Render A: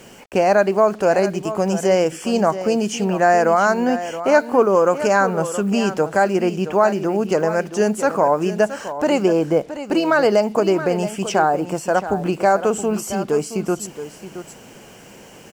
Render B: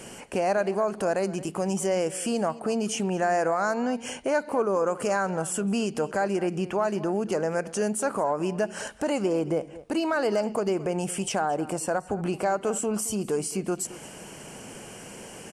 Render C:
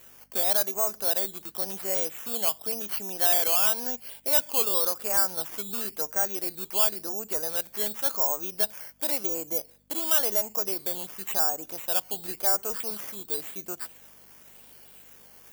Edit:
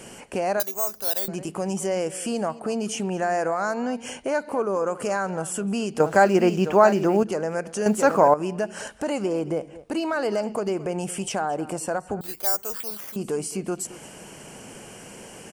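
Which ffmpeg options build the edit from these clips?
-filter_complex "[2:a]asplit=2[s0][s1];[0:a]asplit=2[s2][s3];[1:a]asplit=5[s4][s5][s6][s7][s8];[s4]atrim=end=0.602[s9];[s0]atrim=start=0.598:end=1.282[s10];[s5]atrim=start=1.278:end=6.002[s11];[s2]atrim=start=5.998:end=7.232[s12];[s6]atrim=start=7.228:end=7.862[s13];[s3]atrim=start=7.858:end=8.342[s14];[s7]atrim=start=8.338:end=12.212[s15];[s1]atrim=start=12.208:end=13.162[s16];[s8]atrim=start=13.158[s17];[s9][s10]acrossfade=d=0.004:c1=hsin:c2=hsin[s18];[s18][s11]acrossfade=d=0.004:c1=hsin:c2=hsin[s19];[s19][s12]acrossfade=d=0.004:c1=hsin:c2=hsin[s20];[s20][s13]acrossfade=d=0.004:c1=hsin:c2=hsin[s21];[s21][s14]acrossfade=d=0.004:c1=hsin:c2=hsin[s22];[s22][s15]acrossfade=d=0.004:c1=hsin:c2=hsin[s23];[s23][s16]acrossfade=d=0.004:c1=hsin:c2=hsin[s24];[s24][s17]acrossfade=d=0.004:c1=hsin:c2=hsin"

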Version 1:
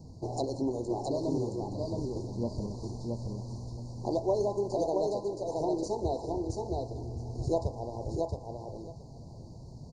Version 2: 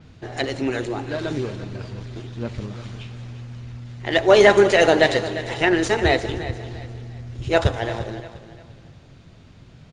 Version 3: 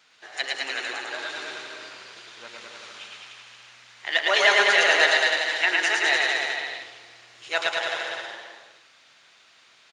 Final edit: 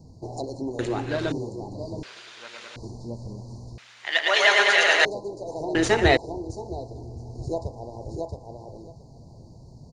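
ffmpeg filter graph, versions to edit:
-filter_complex "[1:a]asplit=2[s0][s1];[2:a]asplit=2[s2][s3];[0:a]asplit=5[s4][s5][s6][s7][s8];[s4]atrim=end=0.792[s9];[s0]atrim=start=0.788:end=1.322[s10];[s5]atrim=start=1.318:end=2.032[s11];[s2]atrim=start=2.028:end=2.762[s12];[s6]atrim=start=2.758:end=3.782[s13];[s3]atrim=start=3.778:end=5.052[s14];[s7]atrim=start=5.048:end=5.752[s15];[s1]atrim=start=5.748:end=6.172[s16];[s8]atrim=start=6.168[s17];[s9][s10]acrossfade=d=0.004:c1=hsin:c2=hsin[s18];[s18][s11]acrossfade=d=0.004:c1=hsin:c2=hsin[s19];[s19][s12]acrossfade=d=0.004:c1=hsin:c2=hsin[s20];[s20][s13]acrossfade=d=0.004:c1=hsin:c2=hsin[s21];[s21][s14]acrossfade=d=0.004:c1=hsin:c2=hsin[s22];[s22][s15]acrossfade=d=0.004:c1=hsin:c2=hsin[s23];[s23][s16]acrossfade=d=0.004:c1=hsin:c2=hsin[s24];[s24][s17]acrossfade=d=0.004:c1=hsin:c2=hsin"

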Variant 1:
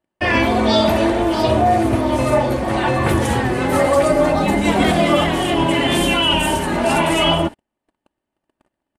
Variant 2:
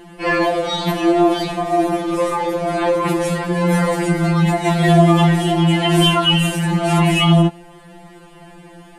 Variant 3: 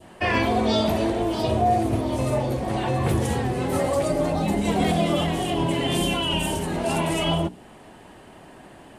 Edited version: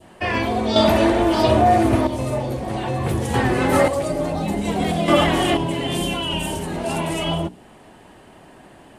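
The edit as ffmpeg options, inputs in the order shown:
-filter_complex "[0:a]asplit=3[s0][s1][s2];[2:a]asplit=4[s3][s4][s5][s6];[s3]atrim=end=0.762[s7];[s0]atrim=start=0.758:end=2.072[s8];[s4]atrim=start=2.068:end=3.342[s9];[s1]atrim=start=3.338:end=3.882[s10];[s5]atrim=start=3.878:end=5.082[s11];[s2]atrim=start=5.078:end=5.572[s12];[s6]atrim=start=5.568[s13];[s7][s8]acrossfade=d=0.004:c1=hsin:c2=hsin[s14];[s14][s9]acrossfade=d=0.004:c1=hsin:c2=hsin[s15];[s15][s10]acrossfade=d=0.004:c1=hsin:c2=hsin[s16];[s16][s11]acrossfade=d=0.004:c1=hsin:c2=hsin[s17];[s17][s12]acrossfade=d=0.004:c1=hsin:c2=hsin[s18];[s18][s13]acrossfade=d=0.004:c1=hsin:c2=hsin"

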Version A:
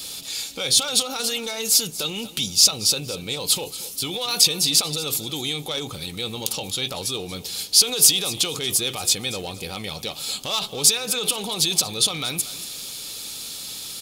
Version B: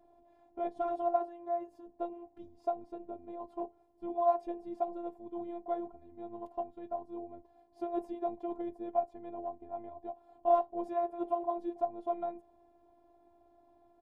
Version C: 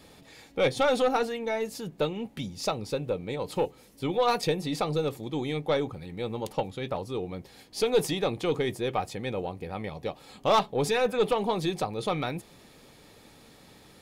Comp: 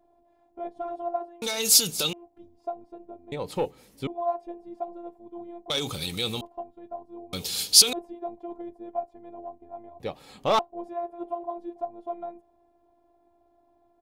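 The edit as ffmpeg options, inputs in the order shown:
-filter_complex "[0:a]asplit=3[s0][s1][s2];[2:a]asplit=2[s3][s4];[1:a]asplit=6[s5][s6][s7][s8][s9][s10];[s5]atrim=end=1.422[s11];[s0]atrim=start=1.418:end=2.132[s12];[s6]atrim=start=2.128:end=3.322[s13];[s3]atrim=start=3.318:end=4.072[s14];[s7]atrim=start=4.068:end=5.702[s15];[s1]atrim=start=5.698:end=6.412[s16];[s8]atrim=start=6.408:end=7.332[s17];[s2]atrim=start=7.328:end=7.932[s18];[s9]atrim=start=7.928:end=10.002[s19];[s4]atrim=start=9.998:end=10.592[s20];[s10]atrim=start=10.588[s21];[s11][s12]acrossfade=d=0.004:c1=hsin:c2=hsin[s22];[s22][s13]acrossfade=d=0.004:c1=hsin:c2=hsin[s23];[s23][s14]acrossfade=d=0.004:c1=hsin:c2=hsin[s24];[s24][s15]acrossfade=d=0.004:c1=hsin:c2=hsin[s25];[s25][s16]acrossfade=d=0.004:c1=hsin:c2=hsin[s26];[s26][s17]acrossfade=d=0.004:c1=hsin:c2=hsin[s27];[s27][s18]acrossfade=d=0.004:c1=hsin:c2=hsin[s28];[s28][s19]acrossfade=d=0.004:c1=hsin:c2=hsin[s29];[s29][s20]acrossfade=d=0.004:c1=hsin:c2=hsin[s30];[s30][s21]acrossfade=d=0.004:c1=hsin:c2=hsin"

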